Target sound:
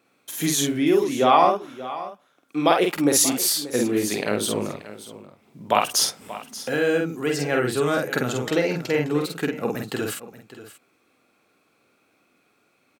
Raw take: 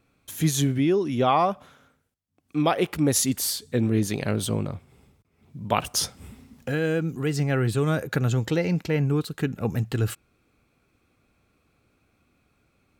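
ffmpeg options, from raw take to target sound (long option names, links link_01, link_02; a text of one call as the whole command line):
ffmpeg -i in.wav -filter_complex "[0:a]highpass=290,asplit=2[link_01][link_02];[link_02]adelay=48,volume=-3dB[link_03];[link_01][link_03]amix=inputs=2:normalize=0,asplit=2[link_04][link_05];[link_05]aecho=0:1:582:0.168[link_06];[link_04][link_06]amix=inputs=2:normalize=0,volume=3.5dB" out.wav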